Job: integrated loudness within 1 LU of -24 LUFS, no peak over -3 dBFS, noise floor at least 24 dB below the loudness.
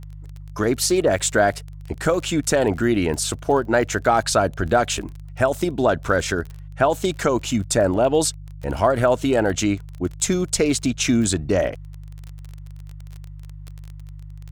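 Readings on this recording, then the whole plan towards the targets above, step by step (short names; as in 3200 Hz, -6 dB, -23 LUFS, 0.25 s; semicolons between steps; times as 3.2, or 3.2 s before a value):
ticks 27/s; hum 50 Hz; harmonics up to 150 Hz; hum level -34 dBFS; loudness -21.0 LUFS; peak -5.5 dBFS; loudness target -24.0 LUFS
-> de-click; de-hum 50 Hz, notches 3; gain -3 dB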